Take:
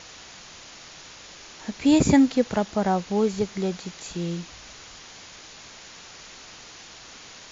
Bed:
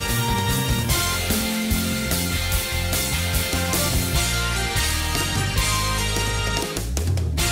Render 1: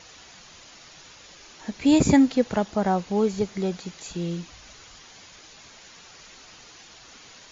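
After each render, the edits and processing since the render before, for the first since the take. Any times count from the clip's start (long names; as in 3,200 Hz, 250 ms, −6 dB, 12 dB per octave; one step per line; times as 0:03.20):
broadband denoise 6 dB, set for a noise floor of −45 dBFS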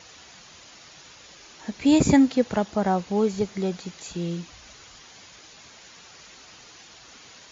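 high-pass filter 43 Hz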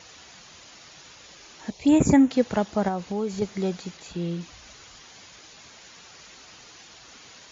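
0:01.70–0:02.31: phaser swept by the level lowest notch 200 Hz, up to 4,700 Hz, full sweep at −14.5 dBFS
0:02.88–0:03.42: downward compressor 2.5 to 1, threshold −26 dBFS
0:03.97–0:04.41: high-frequency loss of the air 90 metres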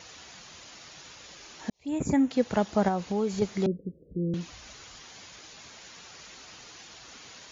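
0:01.70–0:02.74: fade in
0:03.66–0:04.34: Butterworth low-pass 530 Hz 72 dB per octave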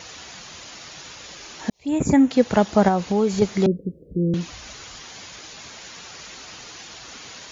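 level +8 dB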